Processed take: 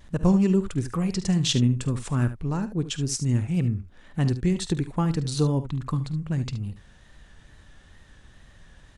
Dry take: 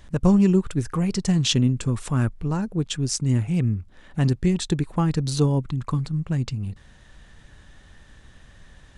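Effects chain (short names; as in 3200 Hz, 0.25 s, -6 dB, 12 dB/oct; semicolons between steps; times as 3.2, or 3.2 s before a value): wow and flutter 52 cents; on a send: early reflections 49 ms -17.5 dB, 73 ms -13 dB; on the sum: gain -2.5 dB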